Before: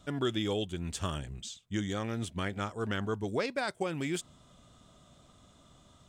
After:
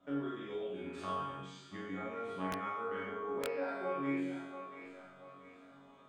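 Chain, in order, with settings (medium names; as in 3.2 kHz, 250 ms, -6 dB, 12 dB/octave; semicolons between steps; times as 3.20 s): three-band isolator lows -21 dB, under 190 Hz, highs -24 dB, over 2.3 kHz; on a send: thinning echo 681 ms, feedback 44%, high-pass 610 Hz, level -16.5 dB; on the sum: Schroeder reverb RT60 0.68 s, combs from 28 ms, DRR -5 dB; compression 4:1, threshold -36 dBFS, peak gain reduction 12 dB; chord resonator F#2 fifth, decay 0.68 s; 2.50–3.47 s: integer overflow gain 43 dB; trim +14 dB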